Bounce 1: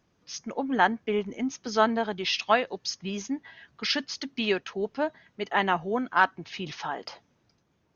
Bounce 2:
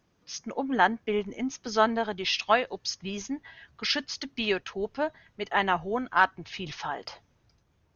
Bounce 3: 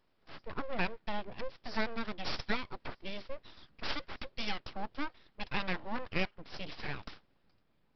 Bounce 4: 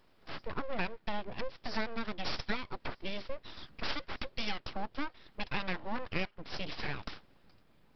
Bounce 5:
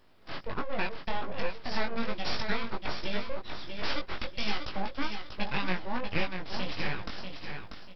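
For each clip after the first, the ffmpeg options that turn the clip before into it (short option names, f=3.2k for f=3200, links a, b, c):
-af "asubboost=boost=5:cutoff=88"
-af "acompressor=threshold=-28dB:ratio=2,aresample=11025,aeval=exprs='abs(val(0))':c=same,aresample=44100,volume=-3dB"
-af "acompressor=threshold=-45dB:ratio=2,volume=8.5dB"
-filter_complex "[0:a]flanger=delay=19:depth=2.9:speed=1.3,asplit=2[a][b];[b]aecho=0:1:640|1280|1920|2560:0.473|0.142|0.0426|0.0128[c];[a][c]amix=inputs=2:normalize=0,volume=6.5dB"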